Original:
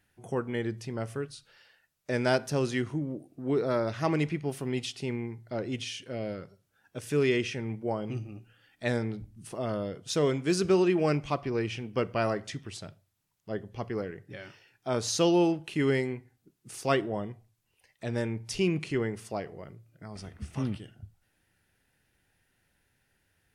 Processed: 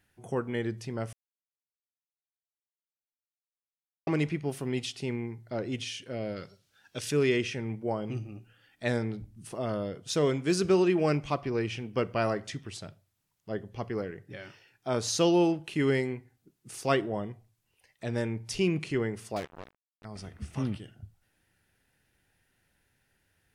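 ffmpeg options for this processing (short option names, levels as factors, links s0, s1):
-filter_complex "[0:a]asettb=1/sr,asplit=3[s0][s1][s2];[s0]atrim=end=6.364[s3];[s1]atrim=start=6.36:end=7.11,asetpts=PTS-STARTPTS,afade=t=in:d=0.004:c=qsin,afade=t=out:st=0.746:d=0.004:c=qsin,equalizer=f=4200:w=0.63:g=12.5[s4];[s2]atrim=start=7.106[s5];[s3][s4]acrossfade=d=0.004:c1=hsin:c2=qsin[s6];[s6][s5]acrossfade=d=0.004:c1=qsin:c2=hsin,asettb=1/sr,asplit=3[s7][s8][s9];[s7]atrim=end=19.364[s10];[s8]atrim=start=19.36:end=20.05,asetpts=PTS-STARTPTS,afade=t=in:d=0.004:c=qsin,afade=t=out:st=0.686:d=0.004:c=qsin,acrusher=bits=5:mix=0:aa=0.5[s11];[s9]atrim=start=20.046[s12];[s10][s11]acrossfade=d=0.004:c1=hsin:c2=qsin[s13];[s13][s12]acrossfade=d=0.004:c1=qsin:c2=hsin,asplit=3[s14][s15][s16];[s14]atrim=end=1.13,asetpts=PTS-STARTPTS,afade=t=out:st=1.126:d=0.004:c=hsin[s17];[s15]atrim=start=1.13:end=4.07,asetpts=PTS-STARTPTS,volume=0[s18];[s16]atrim=start=4.07,asetpts=PTS-STARTPTS,afade=t=in:d=0.004:c=hsin[s19];[s17][s18][s19]concat=n=3:v=0:a=1"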